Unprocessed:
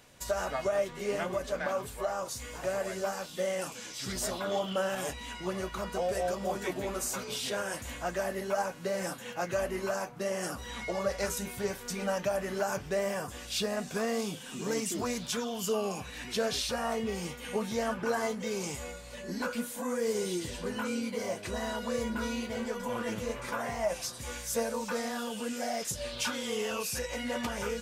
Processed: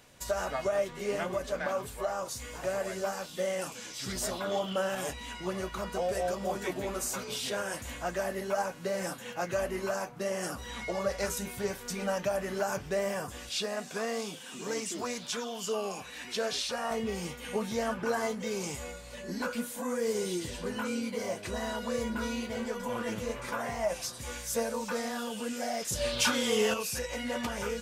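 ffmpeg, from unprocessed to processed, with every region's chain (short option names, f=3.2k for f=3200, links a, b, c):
-filter_complex "[0:a]asettb=1/sr,asplit=3[a][b][c];[a]atrim=end=13.494[d];[b]atrim=start=13.49:end=16.91,asetpts=PTS-STARTPTS,afade=t=in:d=0.004:c=qsin,afade=t=out:st=3.416:d=0.004:c=qsin,acrossover=split=9400[e][f];[f]acompressor=threshold=-56dB:ratio=4:attack=1:release=60[g];[e][g]amix=inputs=2:normalize=0,highpass=f=350:p=1[h];[c]atrim=start=16.906[i];[d][h]acrossfade=d=0.004:c1=hsin:c2=qsin[j];[j][i]acrossfade=d=0.004:c1=qsin:c2=hsin,asettb=1/sr,asplit=3[k][l][m];[k]atrim=end=25.924[n];[l]atrim=start=25.92:end=26.74,asetpts=PTS-STARTPTS,afade=t=in:d=0.004:c=qsin,afade=t=out:st=0.816:d=0.004:c=qsin,acontrast=41,asplit=2[o][p];[p]adelay=33,volume=-13dB[q];[o][q]amix=inputs=2:normalize=0,atrim=end_sample=36162[r];[m]atrim=start=26.736[s];[n][r]acrossfade=d=0.004:c1=hsin:c2=qsin[t];[t][s]acrossfade=d=0.004:c1=qsin:c2=hsin"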